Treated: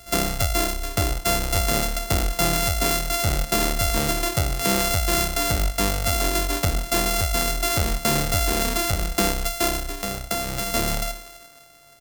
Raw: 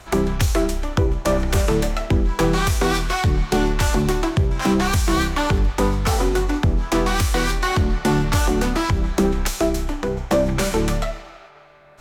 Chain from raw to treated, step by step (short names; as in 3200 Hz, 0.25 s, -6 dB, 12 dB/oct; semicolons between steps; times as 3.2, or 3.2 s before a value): sample sorter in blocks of 64 samples; 9.78–10.7 compressor, threshold -20 dBFS, peak gain reduction 7 dB; high shelf 3800 Hz +10.5 dB; on a send: echo 0.105 s -21 dB; on the sum: gain -5 dB